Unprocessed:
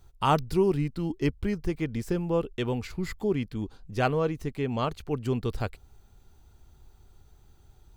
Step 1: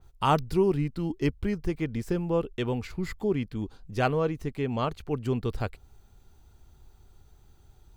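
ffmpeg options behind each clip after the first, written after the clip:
-af "adynamicequalizer=threshold=0.00398:dfrequency=3300:dqfactor=0.7:tfrequency=3300:tqfactor=0.7:attack=5:release=100:ratio=0.375:range=2.5:mode=cutabove:tftype=highshelf"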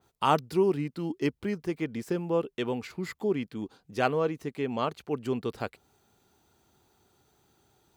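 -af "highpass=200"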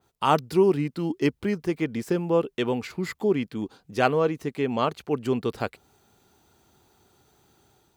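-af "dynaudnorm=f=120:g=5:m=5dB"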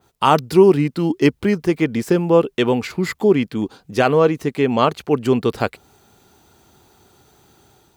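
-af "alimiter=level_in=9.5dB:limit=-1dB:release=50:level=0:latency=1,volume=-1dB"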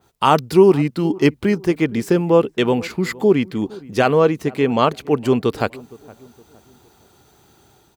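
-filter_complex "[0:a]asplit=2[a][b];[b]adelay=464,lowpass=f=910:p=1,volume=-20.5dB,asplit=2[c][d];[d]adelay=464,lowpass=f=910:p=1,volume=0.42,asplit=2[e][f];[f]adelay=464,lowpass=f=910:p=1,volume=0.42[g];[a][c][e][g]amix=inputs=4:normalize=0"

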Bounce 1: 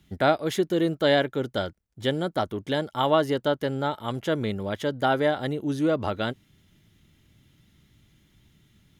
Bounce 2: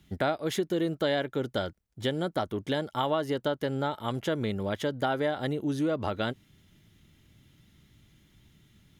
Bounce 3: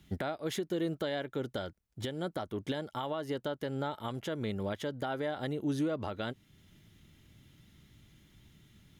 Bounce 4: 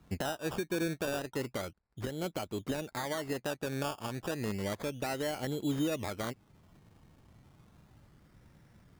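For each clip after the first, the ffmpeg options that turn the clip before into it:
-af "acompressor=threshold=-26dB:ratio=3"
-af "alimiter=level_in=0.5dB:limit=-24dB:level=0:latency=1:release=447,volume=-0.5dB"
-af "acrusher=samples=17:mix=1:aa=0.000001:lfo=1:lforange=10.2:lforate=0.32"

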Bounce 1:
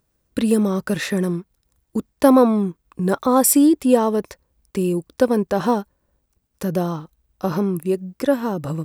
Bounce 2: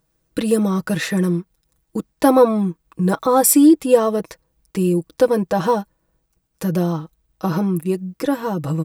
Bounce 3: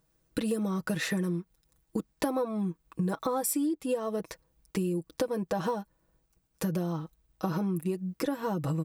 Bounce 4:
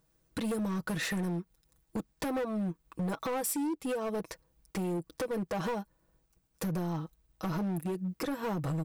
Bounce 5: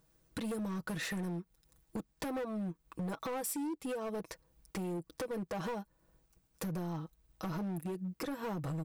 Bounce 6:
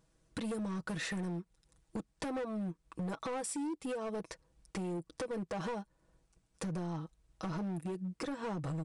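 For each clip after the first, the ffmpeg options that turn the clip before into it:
-af "aecho=1:1:6.2:0.68"
-af "acompressor=threshold=-23dB:ratio=12,volume=-3.5dB"
-af "asoftclip=type=hard:threshold=-29.5dB"
-af "acompressor=threshold=-49dB:ratio=1.5,volume=1.5dB"
-af "aresample=22050,aresample=44100"

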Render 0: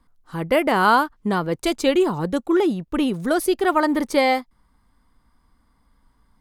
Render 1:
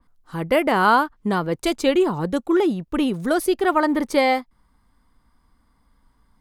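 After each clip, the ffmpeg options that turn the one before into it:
-af "adynamicequalizer=threshold=0.0158:dfrequency=3600:dqfactor=0.7:tfrequency=3600:tqfactor=0.7:attack=5:release=100:ratio=0.375:range=3:mode=cutabove:tftype=highshelf"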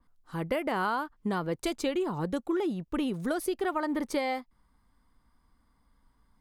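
-af "acompressor=threshold=-20dB:ratio=6,volume=-6dB"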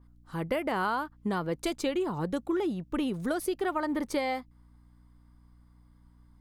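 -af "aeval=exprs='val(0)+0.00141*(sin(2*PI*60*n/s)+sin(2*PI*2*60*n/s)/2+sin(2*PI*3*60*n/s)/3+sin(2*PI*4*60*n/s)/4+sin(2*PI*5*60*n/s)/5)':c=same"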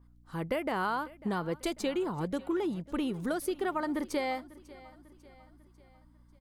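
-af "aecho=1:1:546|1092|1638|2184:0.1|0.05|0.025|0.0125,volume=-2dB"

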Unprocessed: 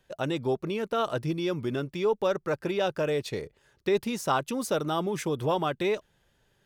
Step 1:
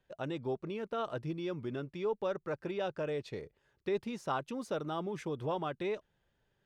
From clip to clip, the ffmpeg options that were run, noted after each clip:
-af "aemphasis=mode=reproduction:type=50fm,volume=-8.5dB"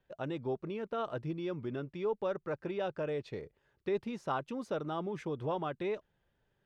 -af "aemphasis=mode=reproduction:type=cd"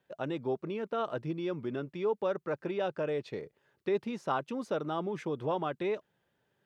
-af "highpass=140,volume=3dB"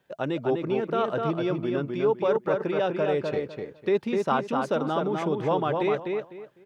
-filter_complex "[0:a]asplit=2[a][b];[b]adelay=251,lowpass=f=3.5k:p=1,volume=-3.5dB,asplit=2[c][d];[d]adelay=251,lowpass=f=3.5k:p=1,volume=0.24,asplit=2[e][f];[f]adelay=251,lowpass=f=3.5k:p=1,volume=0.24[g];[a][c][e][g]amix=inputs=4:normalize=0,volume=6.5dB"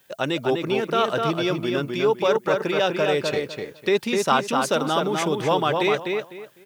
-af "crystalizer=i=7:c=0,volume=2dB"

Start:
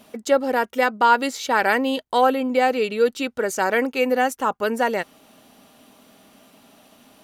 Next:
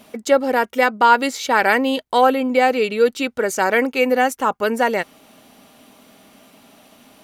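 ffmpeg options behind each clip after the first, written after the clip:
-af "equalizer=f=2.2k:t=o:w=0.21:g=3.5,volume=3dB"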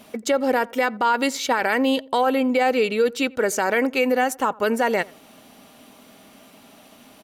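-filter_complex "[0:a]alimiter=limit=-11dB:level=0:latency=1:release=53,asplit=2[a][b];[b]adelay=86,lowpass=f=1.2k:p=1,volume=-22dB,asplit=2[c][d];[d]adelay=86,lowpass=f=1.2k:p=1,volume=0.37,asplit=2[e][f];[f]adelay=86,lowpass=f=1.2k:p=1,volume=0.37[g];[a][c][e][g]amix=inputs=4:normalize=0"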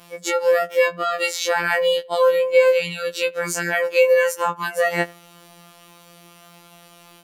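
-af "afftfilt=real='hypot(re,im)*cos(PI*b)':imag='0':win_size=2048:overlap=0.75,afftfilt=real='re*2.83*eq(mod(b,8),0)':imag='im*2.83*eq(mod(b,8),0)':win_size=2048:overlap=0.75,volume=2.5dB"

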